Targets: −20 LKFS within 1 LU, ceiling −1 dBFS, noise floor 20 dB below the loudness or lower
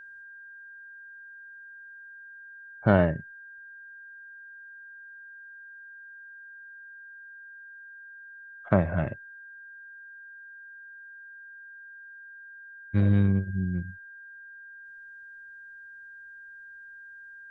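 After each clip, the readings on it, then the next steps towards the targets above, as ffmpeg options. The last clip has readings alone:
interfering tone 1,600 Hz; level of the tone −44 dBFS; integrated loudness −26.5 LKFS; sample peak −5.0 dBFS; target loudness −20.0 LKFS
→ -af "bandreject=frequency=1600:width=30"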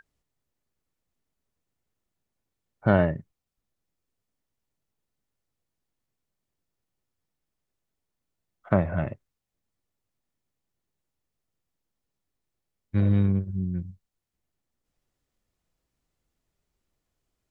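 interfering tone none found; integrated loudness −26.0 LKFS; sample peak −5.0 dBFS; target loudness −20.0 LKFS
→ -af "volume=6dB,alimiter=limit=-1dB:level=0:latency=1"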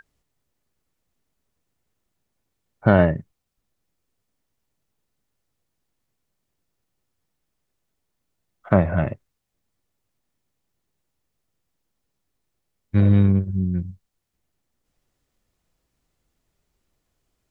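integrated loudness −20.0 LKFS; sample peak −1.0 dBFS; background noise floor −78 dBFS

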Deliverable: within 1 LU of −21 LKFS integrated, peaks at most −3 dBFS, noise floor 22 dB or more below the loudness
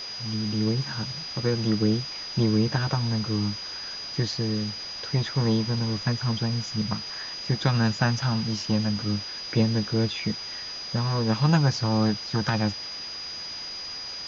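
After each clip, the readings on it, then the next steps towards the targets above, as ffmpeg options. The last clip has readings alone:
interfering tone 4,900 Hz; level of the tone −34 dBFS; background noise floor −36 dBFS; target noise floor −49 dBFS; integrated loudness −26.5 LKFS; sample peak −7.5 dBFS; target loudness −21.0 LKFS
→ -af "bandreject=frequency=4900:width=30"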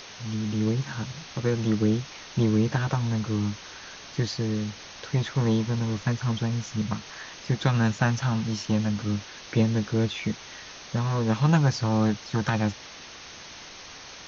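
interfering tone none found; background noise floor −44 dBFS; target noise floor −49 dBFS
→ -af "afftdn=noise_reduction=6:noise_floor=-44"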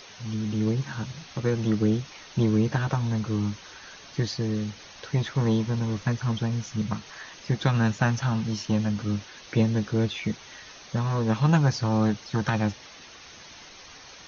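background noise floor −47 dBFS; target noise floor −49 dBFS
→ -af "afftdn=noise_reduction=6:noise_floor=-47"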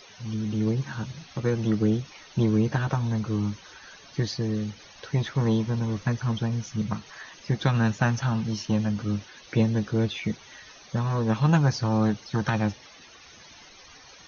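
background noise floor −50 dBFS; integrated loudness −27.0 LKFS; sample peak −7.5 dBFS; target loudness −21.0 LKFS
→ -af "volume=6dB,alimiter=limit=-3dB:level=0:latency=1"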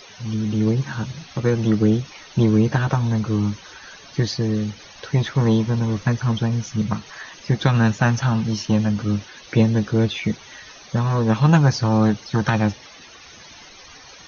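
integrated loudness −21.0 LKFS; sample peak −3.0 dBFS; background noise floor −44 dBFS

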